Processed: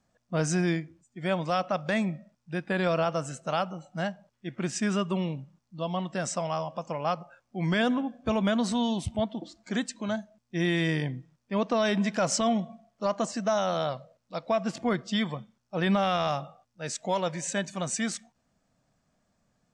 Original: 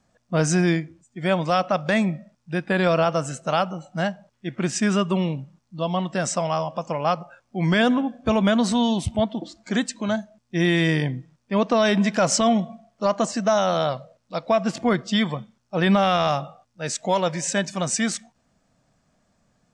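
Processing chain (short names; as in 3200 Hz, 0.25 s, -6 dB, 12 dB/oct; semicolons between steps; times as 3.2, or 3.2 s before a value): 17.32–18.02 notch 5200 Hz, Q 7.7; gain -6.5 dB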